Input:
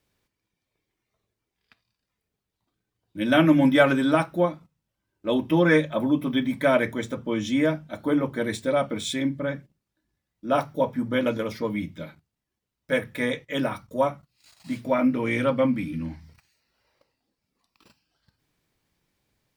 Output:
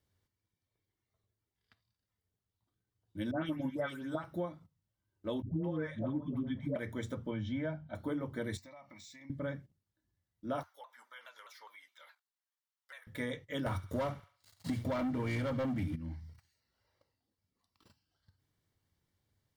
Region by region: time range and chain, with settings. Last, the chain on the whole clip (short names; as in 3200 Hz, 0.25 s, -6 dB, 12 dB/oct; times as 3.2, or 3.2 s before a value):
3.31–4.24 gate -19 dBFS, range -9 dB + dispersion highs, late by 0.15 s, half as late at 2500 Hz
5.42–6.76 LPF 1800 Hz 6 dB/oct + low shelf 210 Hz +8 dB + dispersion highs, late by 0.146 s, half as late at 530 Hz
7.31–7.95 air absorption 250 m + comb 1.3 ms, depth 51%
8.57–9.3 HPF 800 Hz 6 dB/oct + fixed phaser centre 2200 Hz, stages 8 + compressor 8:1, threshold -41 dBFS
10.63–13.07 HPF 910 Hz 24 dB/oct + compressor 2.5:1, threshold -44 dBFS + shaped vibrato saw down 4.8 Hz, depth 160 cents
13.66–15.96 bell 98 Hz +7.5 dB 0.44 oct + sample leveller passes 3 + thin delay 70 ms, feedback 35%, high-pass 1500 Hz, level -15.5 dB
whole clip: bell 91 Hz +12.5 dB 0.75 oct; notch 2500 Hz, Q 6.2; compressor 6:1, threshold -24 dBFS; gain -9 dB